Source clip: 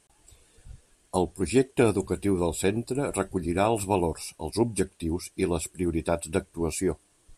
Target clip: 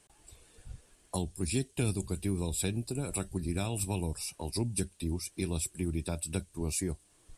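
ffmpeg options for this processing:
-filter_complex "[0:a]acrossover=split=190|3000[a][b][c];[b]acompressor=threshold=-38dB:ratio=6[d];[a][d][c]amix=inputs=3:normalize=0"

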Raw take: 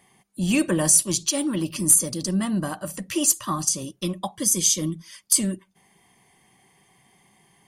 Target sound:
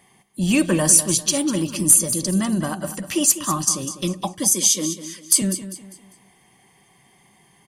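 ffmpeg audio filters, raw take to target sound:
-filter_complex "[0:a]asettb=1/sr,asplit=3[a][b][c];[a]atrim=end=4.534[d];[b]atrim=start=4.53:end=5.42,asetpts=PTS-STARTPTS,afade=t=in:d=0.004:c=qsin,afade=t=out:st=0.886:d=0.004:c=qsin,highpass=f=210:w=0.5412,highpass=f=210:w=1.3066[e];[c]atrim=start=5.416[f];[d][e]acrossfade=d=0.004:c1=hsin:c2=qsin[g];[g][f]acrossfade=d=0.004:c1=qsin:c2=hsin,aecho=1:1:199|398|597|796:0.251|0.0904|0.0326|0.0117,volume=3dB"

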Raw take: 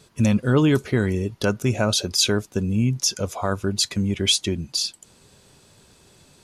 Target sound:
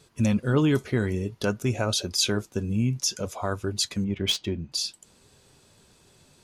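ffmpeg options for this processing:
-filter_complex "[0:a]flanger=delay=2.4:depth=6:regen=-75:speed=0.55:shape=sinusoidal,asettb=1/sr,asplit=3[a][b][c];[a]atrim=end=4.044[d];[b]atrim=start=4.04:end=4.72,asetpts=PTS-STARTPTS,afade=t=in:d=0.004:c=qsin,afade=t=out:st=0.676:d=0.004:c=qsin,adynamicsmooth=sensitivity=1.5:basefreq=2.9k[e];[c]atrim=start=4.716[f];[d][e]acrossfade=d=0.004:c1=hsin:c2=qsin[g];[g][f]acrossfade=d=0.004:c1=qsin:c2=hsin"

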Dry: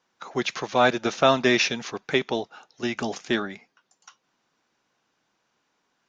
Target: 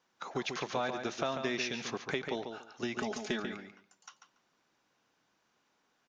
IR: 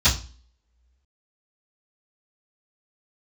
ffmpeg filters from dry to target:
-filter_complex "[0:a]asettb=1/sr,asplit=3[a][b][c];[a]atrim=end=2.944[d];[b]atrim=start=2.94:end=3.4,asetpts=PTS-STARTPTS,afade=t=in:d=0.004:c=qsin,afade=t=out:st=0.456:d=0.004:c=qsin,aecho=1:1:4.7:0.78,atrim=end_sample=20286[e];[c]atrim=start=3.396[f];[d][e]acrossfade=d=0.004:c1=hsin:c2=qsin[g];[g][f]acrossfade=d=0.004:c1=qsin:c2=hsin,acompressor=threshold=-30dB:ratio=4,asplit=2[h][i];[i]adelay=142,lowpass=f=4.3k:p=1,volume=-6.5dB,asplit=2[j][k];[k]adelay=142,lowpass=f=4.3k:p=1,volume=0.18,asplit=2[l][m];[m]adelay=142,lowpass=f=4.3k:p=1,volume=0.18[n];[h][j][l][n]amix=inputs=4:normalize=0,volume=-3dB"

